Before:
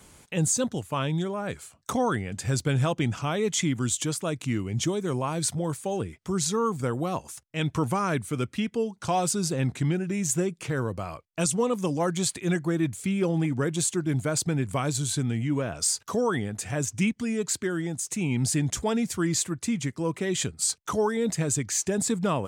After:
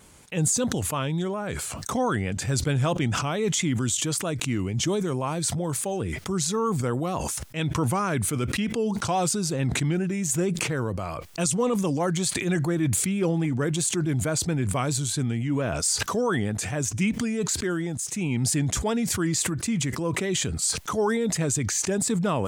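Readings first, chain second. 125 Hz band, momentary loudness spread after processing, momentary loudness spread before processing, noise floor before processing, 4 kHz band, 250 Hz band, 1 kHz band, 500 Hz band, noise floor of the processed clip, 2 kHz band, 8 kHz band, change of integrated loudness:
+2.0 dB, 4 LU, 5 LU, -60 dBFS, +3.0 dB, +1.5 dB, +1.0 dB, +1.0 dB, -36 dBFS, +2.5 dB, +2.5 dB, +1.5 dB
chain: vibrato 4.5 Hz 41 cents; decay stretcher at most 20 dB/s

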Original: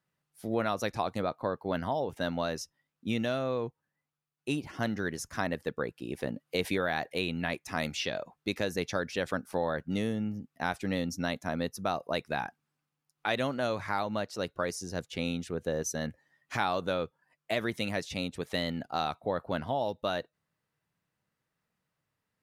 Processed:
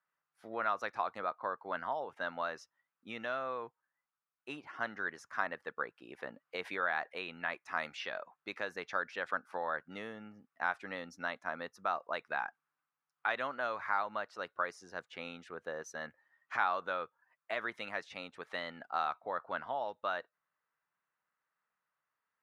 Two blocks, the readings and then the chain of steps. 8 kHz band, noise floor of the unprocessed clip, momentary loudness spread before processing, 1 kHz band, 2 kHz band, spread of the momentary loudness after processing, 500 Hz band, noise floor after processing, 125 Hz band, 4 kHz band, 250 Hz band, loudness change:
-17.0 dB, -85 dBFS, 6 LU, -1.5 dB, -0.5 dB, 11 LU, -8.5 dB, under -85 dBFS, -21.5 dB, -10.5 dB, -16.5 dB, -5.0 dB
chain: band-pass filter 1.3 kHz, Q 1.8; trim +2.5 dB

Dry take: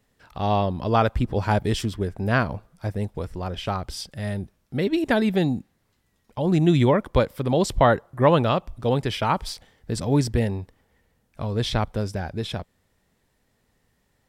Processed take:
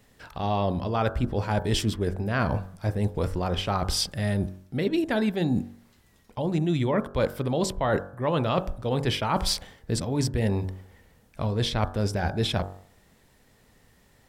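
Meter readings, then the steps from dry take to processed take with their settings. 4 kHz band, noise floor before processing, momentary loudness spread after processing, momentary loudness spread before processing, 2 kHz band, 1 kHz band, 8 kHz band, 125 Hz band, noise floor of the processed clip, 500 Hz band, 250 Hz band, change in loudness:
+1.5 dB, -69 dBFS, 6 LU, 13 LU, -3.5 dB, -4.5 dB, +3.0 dB, -2.5 dB, -60 dBFS, -4.0 dB, -3.5 dB, -3.5 dB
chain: reverse; compression 12:1, threshold -30 dBFS, peak gain reduction 19 dB; reverse; de-hum 47 Hz, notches 37; trim +9 dB

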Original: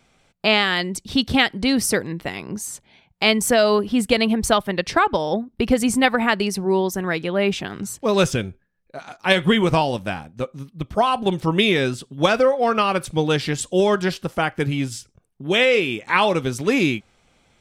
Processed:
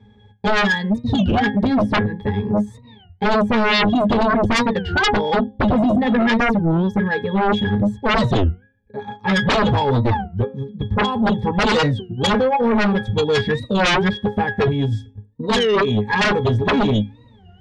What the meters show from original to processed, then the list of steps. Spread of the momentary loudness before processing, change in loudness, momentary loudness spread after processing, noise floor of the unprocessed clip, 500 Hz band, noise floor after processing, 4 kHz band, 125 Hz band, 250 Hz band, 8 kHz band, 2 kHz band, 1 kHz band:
13 LU, +1.5 dB, 7 LU, -63 dBFS, 0.0 dB, -49 dBFS, -1.0 dB, +7.0 dB, +3.5 dB, -9.5 dB, +1.5 dB, +2.5 dB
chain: de-esser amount 55%; bass shelf 110 Hz +10.5 dB; pitch-class resonator G#, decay 0.18 s; de-hum 265 Hz, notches 13; sine folder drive 20 dB, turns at -10 dBFS; warped record 33 1/3 rpm, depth 250 cents; trim -3 dB

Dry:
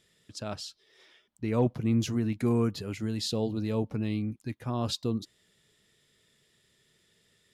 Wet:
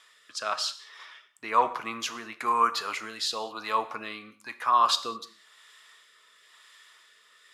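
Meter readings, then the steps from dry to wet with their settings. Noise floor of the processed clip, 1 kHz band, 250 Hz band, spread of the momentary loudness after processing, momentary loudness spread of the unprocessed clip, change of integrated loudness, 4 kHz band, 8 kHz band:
-60 dBFS, +17.0 dB, -15.5 dB, 18 LU, 12 LU, +2.5 dB, +7.5 dB, +5.5 dB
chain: treble shelf 5.5 kHz -5 dB; in parallel at -2 dB: compression, threshold -39 dBFS, peak gain reduction 17.5 dB; on the sum: rotary cabinet horn 1 Hz; resonant high-pass 1.1 kHz, resonance Q 4.9; gated-style reverb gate 230 ms falling, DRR 10.5 dB; trim +9 dB

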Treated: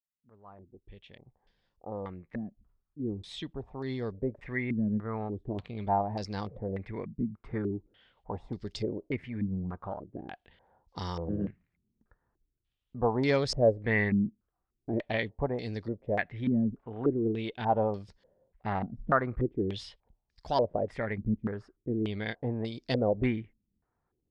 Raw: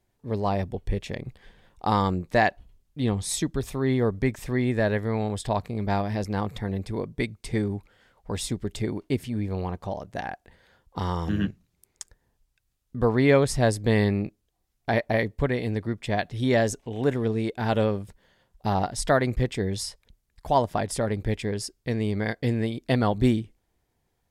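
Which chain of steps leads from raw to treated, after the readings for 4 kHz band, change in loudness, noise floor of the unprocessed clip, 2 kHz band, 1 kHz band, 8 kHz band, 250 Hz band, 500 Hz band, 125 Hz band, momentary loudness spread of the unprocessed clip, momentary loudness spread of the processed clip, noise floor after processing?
-7.0 dB, -6.0 dB, -74 dBFS, -5.5 dB, -6.0 dB, -19.0 dB, -5.5 dB, -5.5 dB, -8.5 dB, 11 LU, 13 LU, -83 dBFS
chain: fade-in on the opening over 5.81 s; Chebyshev shaper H 6 -31 dB, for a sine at -6 dBFS; step-sequenced low-pass 3.4 Hz 220–5000 Hz; trim -8 dB

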